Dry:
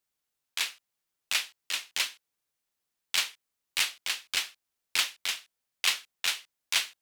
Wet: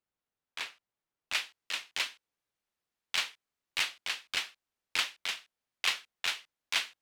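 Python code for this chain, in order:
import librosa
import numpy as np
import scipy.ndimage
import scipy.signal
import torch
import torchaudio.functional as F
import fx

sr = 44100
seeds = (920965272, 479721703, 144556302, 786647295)

y = fx.lowpass(x, sr, hz=fx.steps((0.0, 1300.0), (1.33, 3000.0)), slope=6)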